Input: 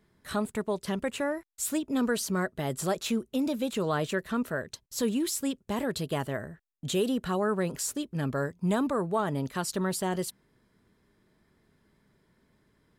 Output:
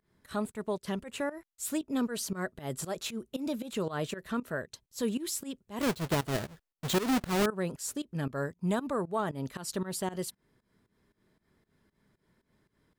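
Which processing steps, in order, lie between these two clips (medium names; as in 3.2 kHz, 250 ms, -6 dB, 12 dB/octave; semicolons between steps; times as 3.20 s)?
5.81–7.46 s: square wave that keeps the level; volume shaper 116 bpm, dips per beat 2, -19 dB, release 169 ms; trim -2.5 dB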